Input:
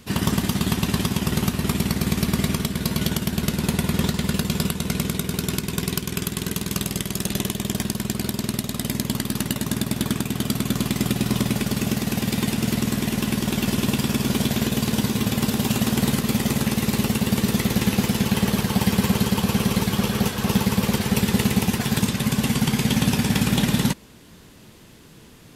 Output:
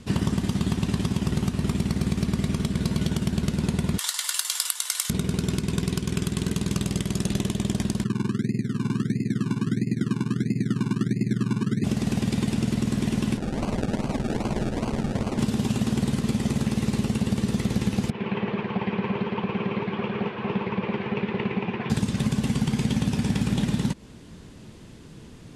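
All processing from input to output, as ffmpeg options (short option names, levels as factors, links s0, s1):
-filter_complex "[0:a]asettb=1/sr,asplit=3[s0][s1][s2];[s0]atrim=end=3.984[s3];[s1]atrim=start=3.98:end=5.1,asetpts=PTS-STARTPTS,afade=t=in:d=0.004:c=qsin,afade=t=out:st=1.116:d=0.004:c=qsin,highpass=f=960:w=0.5412,highpass=f=960:w=1.3066,aemphasis=mode=production:type=riaa,bandreject=f=2500:w=8.9[s4];[s2]atrim=start=5.096[s5];[s3][s4]acrossfade=d=0.004:c1=hsin:c2=qsin[s6];[s6][s5]acrossfade=d=0.004:c1=qsin:c2=hsin,asettb=1/sr,asplit=3[s7][s8][s9];[s7]atrim=end=8.044[s10];[s8]atrim=start=8.04:end=11.84,asetpts=PTS-STARTPTS,afade=t=in:d=0.004:c=qsin,afade=t=out:st=3.796:d=0.004:c=qsin,asuperpass=centerf=210:order=12:qfactor=0.62,acrusher=samples=27:mix=1:aa=0.000001:lfo=1:lforange=16.2:lforate=1.5[s11];[s9]atrim=start=11.836[s12];[s10][s11]acrossfade=d=0.004:c1=hsin:c2=qsin[s13];[s13][s12]acrossfade=d=0.004:c1=qsin:c2=hsin,asettb=1/sr,asplit=3[s14][s15][s16];[s14]atrim=end=13.374[s17];[s15]atrim=start=13.37:end=15.39,asetpts=PTS-STARTPTS,afade=t=in:d=0.004:c=qsin,afade=t=out:st=2.016:d=0.004:c=qsin,lowshelf=f=500:g=-11,acrusher=samples=34:mix=1:aa=0.000001:lfo=1:lforange=20.4:lforate=2.5[s18];[s16]atrim=start=15.386[s19];[s17][s18]acrossfade=d=0.004:c1=hsin:c2=qsin[s20];[s20][s19]acrossfade=d=0.004:c1=qsin:c2=hsin,asettb=1/sr,asplit=3[s21][s22][s23];[s21]atrim=end=18.104[s24];[s22]atrim=start=18.1:end=21.9,asetpts=PTS-STARTPTS,afade=t=in:d=0.004:c=qsin,afade=t=out:st=3.796:d=0.004:c=qsin,flanger=delay=0:depth=9.1:regen=-61:speed=1.5:shape=triangular,highpass=220,equalizer=f=260:t=q:w=4:g=-8,equalizer=f=380:t=q:w=4:g=5,equalizer=f=1000:t=q:w=4:g=5,equalizer=f=2400:t=q:w=4:g=6,lowpass=f=2800:w=0.5412,lowpass=f=2800:w=1.3066[s25];[s23]atrim=start=21.896[s26];[s24][s25]acrossfade=d=0.004:c1=hsin:c2=qsin[s27];[s27][s26]acrossfade=d=0.004:c1=qsin:c2=hsin,lowpass=f=10000:w=0.5412,lowpass=f=10000:w=1.3066,lowshelf=f=480:g=8,acompressor=threshold=0.141:ratio=6,volume=0.708"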